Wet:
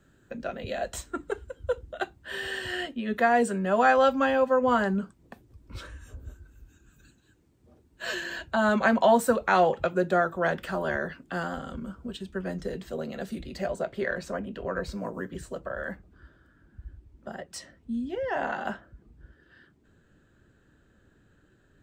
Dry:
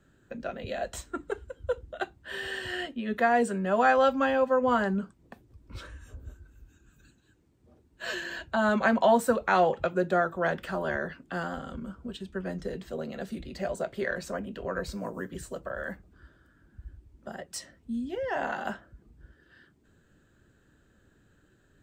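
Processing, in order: treble shelf 6.1 kHz +2.5 dB, from 13.66 s -7.5 dB; trim +1.5 dB

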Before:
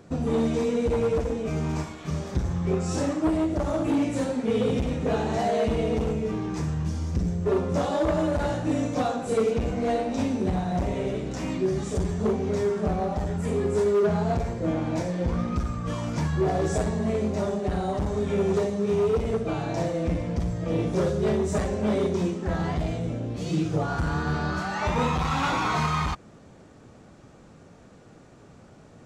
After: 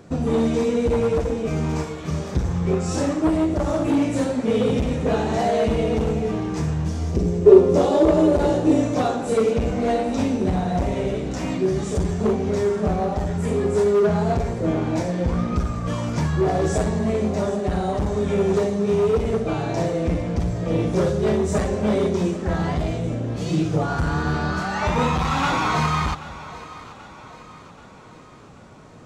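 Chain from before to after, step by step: 7.12–8.81 s: fifteen-band graphic EQ 100 Hz -3 dB, 400 Hz +12 dB, 1.6 kHz -5 dB; on a send: two-band feedback delay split 420 Hz, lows 249 ms, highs 782 ms, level -16 dB; on the sum: trim +4 dB

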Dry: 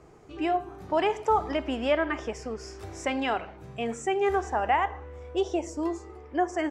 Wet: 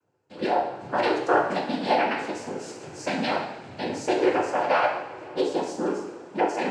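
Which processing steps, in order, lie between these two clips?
gate with hold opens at -41 dBFS; noise-vocoded speech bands 8; two-slope reverb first 0.67 s, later 3.4 s, from -18 dB, DRR 0 dB

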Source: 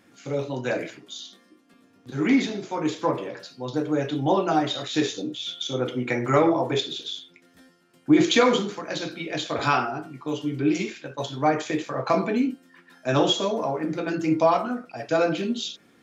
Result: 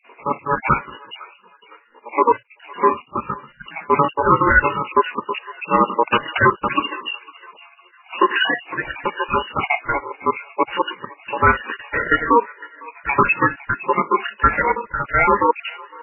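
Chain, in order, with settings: random holes in the spectrogram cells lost 69%; low-pass 3.2 kHz 12 dB/octave; in parallel at -11.5 dB: overload inside the chain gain 23 dB; on the sum: ring modulator 710 Hz; tilt EQ +2 dB/octave; on a send: thinning echo 506 ms, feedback 47%, high-pass 1.1 kHz, level -19 dB; on the sum: loudness maximiser +16.5 dB; trim -1.5 dB; MP3 8 kbps 11.025 kHz

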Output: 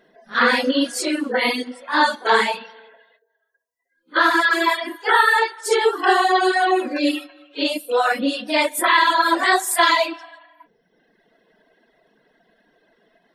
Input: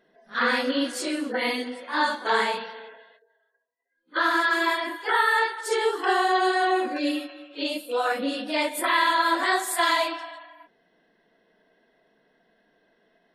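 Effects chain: reverb removal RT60 1.1 s; trim +7.5 dB

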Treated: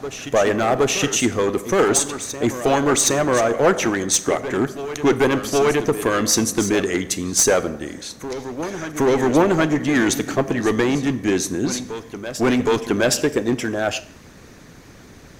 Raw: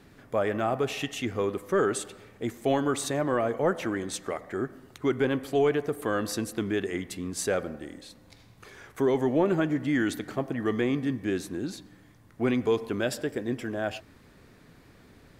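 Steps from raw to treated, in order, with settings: peaking EQ 6.2 kHz +11.5 dB 0.35 oct; one-sided clip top -24 dBFS; harmonic-percussive split percussive +6 dB; on a send: reverse echo 768 ms -12 dB; on the sum: Schroeder reverb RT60 0.51 s, combs from 28 ms, DRR 16 dB; trim +7 dB

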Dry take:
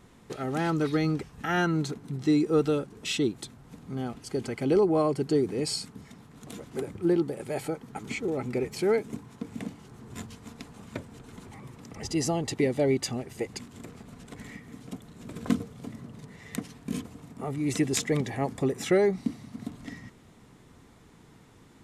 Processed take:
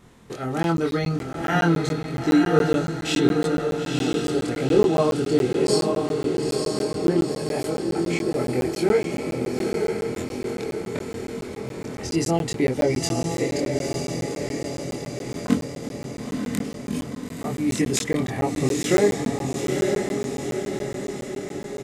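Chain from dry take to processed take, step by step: doubling 24 ms -2 dB; echo that smears into a reverb 930 ms, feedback 60%, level -3 dB; crackling interface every 0.14 s, samples 512, zero, from 0.63 s; trim +2 dB

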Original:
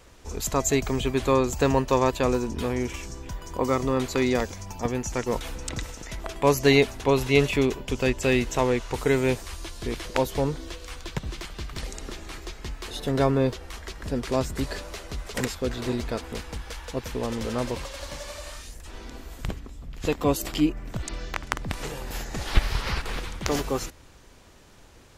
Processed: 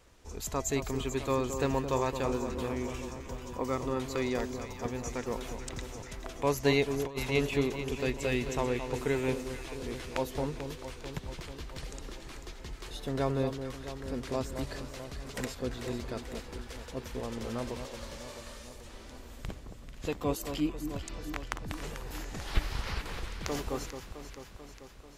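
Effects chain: echo whose repeats swap between lows and highs 220 ms, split 1.2 kHz, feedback 79%, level -8 dB; 6.90–7.32 s: compressor with a negative ratio -24 dBFS, ratio -0.5; trim -8.5 dB

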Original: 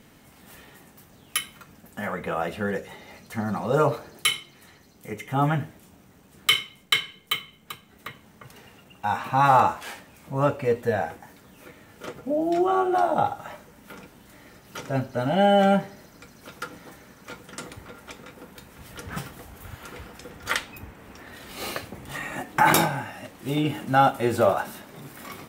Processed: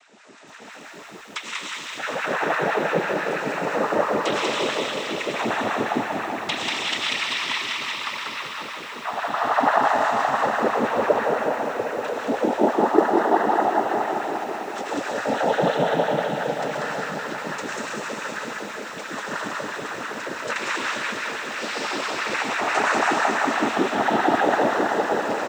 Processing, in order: compression 3:1, threshold -30 dBFS, peak gain reduction 12.5 dB; algorithmic reverb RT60 4.9 s, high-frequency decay 0.95×, pre-delay 60 ms, DRR -6.5 dB; LFO high-pass sine 6 Hz 260–1600 Hz; on a send: delay 191 ms -3.5 dB; on the sum: noise-vocoded speech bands 12; bit-crushed delay 191 ms, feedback 80%, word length 8-bit, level -10.5 dB; trim +1 dB

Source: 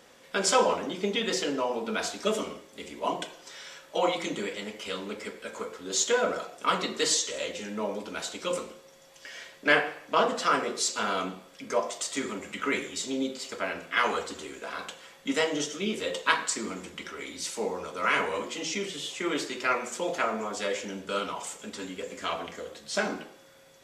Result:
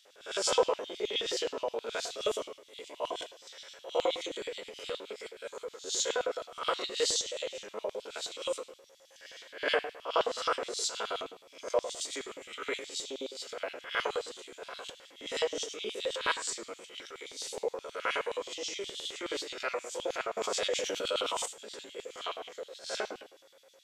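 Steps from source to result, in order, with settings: reverse spectral sustain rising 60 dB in 0.41 s; LFO high-pass square 9.5 Hz 470–3500 Hz; 20.37–21.46 s: level flattener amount 70%; trim -8.5 dB

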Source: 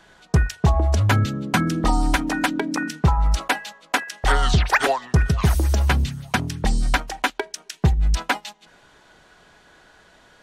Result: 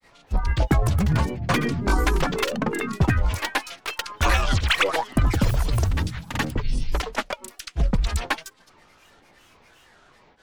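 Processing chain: partial rectifier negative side -3 dB; granulator 138 ms, pitch spread up and down by 12 st; trim +1.5 dB

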